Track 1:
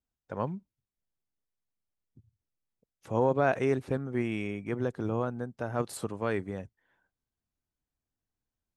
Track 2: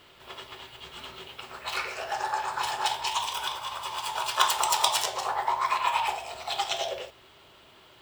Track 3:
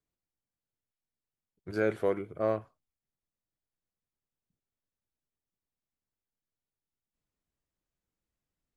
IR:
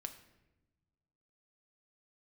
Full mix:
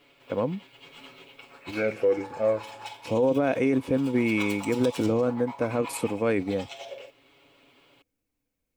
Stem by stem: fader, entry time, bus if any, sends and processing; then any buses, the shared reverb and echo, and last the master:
+2.0 dB, 0.00 s, no send, treble shelf 8.1 kHz +7 dB
-10.0 dB, 0.00 s, no send, comb 7.1 ms, depth 83%; auto duck -7 dB, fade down 1.20 s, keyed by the first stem
-0.5 dB, 0.00 s, send -6.5 dB, Shepard-style flanger falling 1.8 Hz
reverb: on, RT60 1.0 s, pre-delay 5 ms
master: peaking EQ 2.5 kHz +6 dB 0.3 oct; small resonant body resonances 280/490/2200 Hz, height 12 dB, ringing for 40 ms; peak limiter -14.5 dBFS, peak gain reduction 9.5 dB

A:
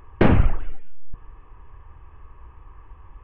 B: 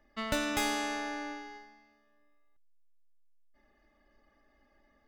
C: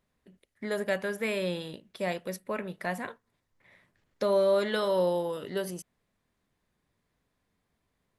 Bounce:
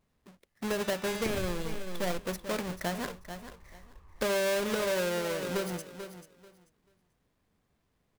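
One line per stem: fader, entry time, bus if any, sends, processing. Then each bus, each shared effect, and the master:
-10.5 dB, 1.05 s, no send, no echo send, compression, threshold -18 dBFS, peak gain reduction 9 dB; vibrato with a chosen wave saw down 5.8 Hz, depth 100 cents
-7.0 dB, 0.50 s, no send, no echo send, high-pass 1.3 kHz; level rider gain up to 11.5 dB; auto duck -17 dB, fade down 1.80 s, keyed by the third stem
-2.5 dB, 0.00 s, no send, echo send -12.5 dB, square wave that keeps the level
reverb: none
echo: feedback delay 438 ms, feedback 20%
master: compression 5:1, threshold -28 dBFS, peak gain reduction 6.5 dB

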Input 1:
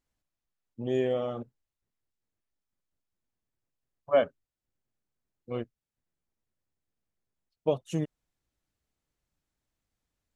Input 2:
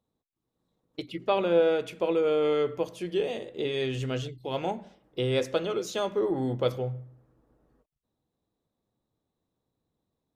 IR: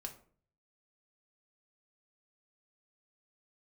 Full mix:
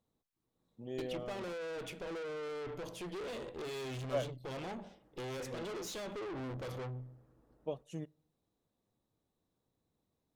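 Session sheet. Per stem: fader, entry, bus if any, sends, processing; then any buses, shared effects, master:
-13.5 dB, 0.00 s, send -15.5 dB, none
+1.0 dB, 0.00 s, no send, peak limiter -23 dBFS, peak gain reduction 10.5 dB; valve stage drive 41 dB, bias 0.6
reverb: on, RT60 0.50 s, pre-delay 4 ms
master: none

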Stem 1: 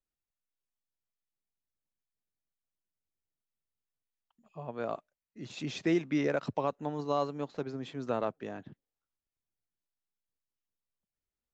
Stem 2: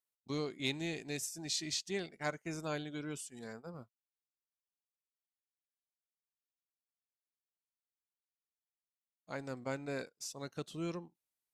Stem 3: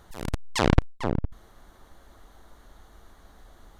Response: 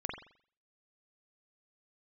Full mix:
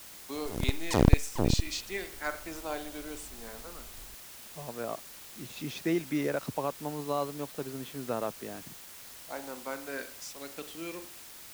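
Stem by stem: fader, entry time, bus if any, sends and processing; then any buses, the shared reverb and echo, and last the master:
-1.0 dB, 0.00 s, no send, hum 60 Hz, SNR 32 dB
-3.0 dB, 0.00 s, send -7.5 dB, high-pass 220 Hz 24 dB/octave; sweeping bell 0.33 Hz 690–2700 Hz +8 dB
+0.5 dB, 0.35 s, no send, peaking EQ 2.1 kHz -12.5 dB 2.2 oct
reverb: on, pre-delay 43 ms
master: word length cut 8-bit, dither triangular

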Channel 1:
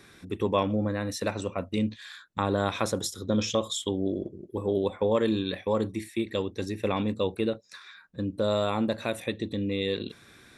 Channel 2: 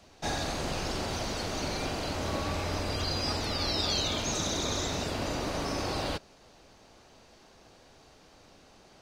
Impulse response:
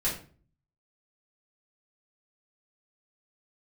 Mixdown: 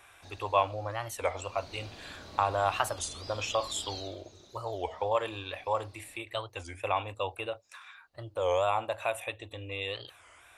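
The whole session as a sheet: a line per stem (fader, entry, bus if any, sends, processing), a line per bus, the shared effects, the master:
-6.0 dB, 0.00 s, no send, FFT filter 100 Hz 0 dB, 190 Hz -29 dB, 290 Hz -11 dB, 430 Hz -7 dB, 700 Hz +11 dB, 1.2 kHz +8 dB, 1.9 kHz +1 dB, 2.8 kHz +11 dB, 4.3 kHz -8 dB, 7.8 kHz +6 dB
1.17 s -21 dB -> 1.76 s -9.5 dB -> 3.98 s -9.5 dB -> 4.25 s -22.5 dB, 0.00 s, no send, peaking EQ 4 kHz +7 dB 0.43 oct; auto duck -7 dB, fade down 0.85 s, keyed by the first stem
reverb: none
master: warped record 33 1/3 rpm, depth 250 cents

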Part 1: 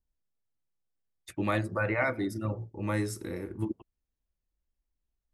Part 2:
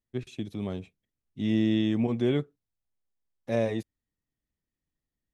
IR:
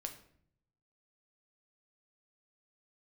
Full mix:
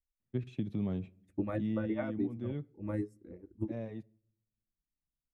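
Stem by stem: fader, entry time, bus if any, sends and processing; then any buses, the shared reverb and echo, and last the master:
-3.0 dB, 0.00 s, send -20 dB, reverb removal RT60 0.94 s; graphic EQ 125/250/500/1000/2000/4000/8000 Hz -10/+4/+4/-4/-5/-9/+5 dB; upward expansion 2.5:1, over -38 dBFS
1.40 s -5 dB -> 2.00 s -18 dB, 0.20 s, send -14.5 dB, high-pass 120 Hz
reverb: on, RT60 0.60 s, pre-delay 7 ms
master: tone controls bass +12 dB, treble -14 dB; compression 2.5:1, threshold -31 dBFS, peak gain reduction 5.5 dB

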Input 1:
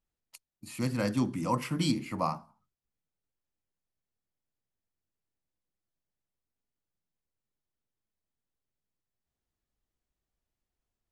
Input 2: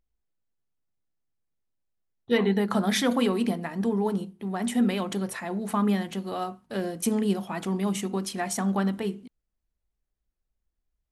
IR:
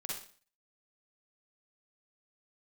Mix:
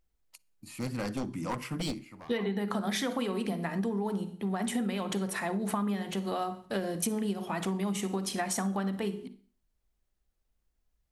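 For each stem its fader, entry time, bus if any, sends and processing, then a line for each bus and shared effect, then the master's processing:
-2.5 dB, 0.00 s, send -24 dB, one-sided wavefolder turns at -25.5 dBFS; auto duck -20 dB, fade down 0.40 s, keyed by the second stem
+2.0 dB, 0.00 s, send -10.5 dB, hum notches 60/120/180/240/300/360/420 Hz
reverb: on, RT60 0.45 s, pre-delay 41 ms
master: compression 10:1, threshold -28 dBFS, peak gain reduction 13 dB

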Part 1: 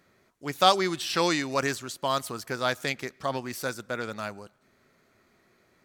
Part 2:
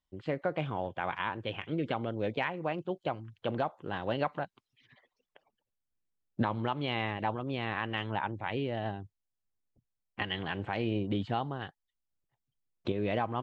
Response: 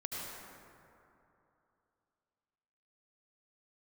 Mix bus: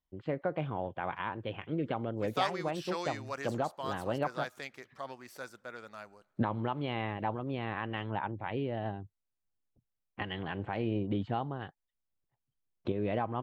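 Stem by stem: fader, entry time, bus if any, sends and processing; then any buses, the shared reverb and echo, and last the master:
-1.0 dB, 1.75 s, no send, bass shelf 420 Hz -11 dB; auto duck -7 dB, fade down 0.90 s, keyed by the second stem
-0.5 dB, 0.00 s, no send, none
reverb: none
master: treble shelf 2.3 kHz -9.5 dB

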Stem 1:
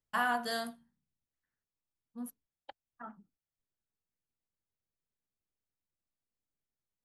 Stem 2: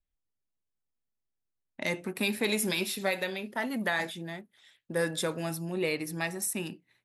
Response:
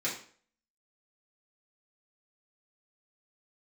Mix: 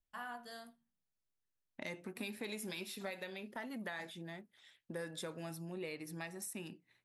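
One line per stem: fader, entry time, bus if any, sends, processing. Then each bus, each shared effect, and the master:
-15.0 dB, 0.00 s, no send, none
-3.5 dB, 0.00 s, no send, treble shelf 8.5 kHz -4 dB; compression 2.5:1, threshold -42 dBFS, peak gain reduction 12 dB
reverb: none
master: none

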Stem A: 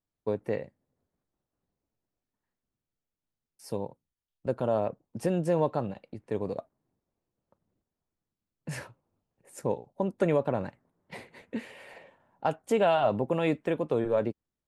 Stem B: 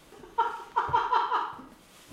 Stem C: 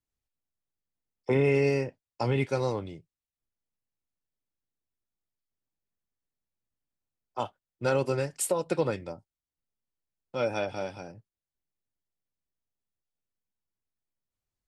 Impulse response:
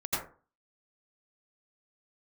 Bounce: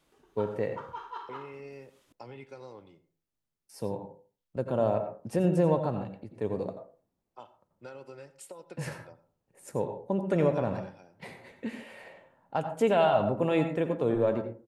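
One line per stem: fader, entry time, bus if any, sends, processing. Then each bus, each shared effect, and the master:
0.0 dB, 0.10 s, send -12.5 dB, harmonic-percussive split percussive -4 dB
-15.5 dB, 0.00 s, no send, none
-13.0 dB, 0.00 s, send -21.5 dB, high-pass 230 Hz 6 dB/octave; treble shelf 8 kHz -10.5 dB; compression, threshold -29 dBFS, peak gain reduction 7.5 dB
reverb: on, RT60 0.40 s, pre-delay 77 ms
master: none

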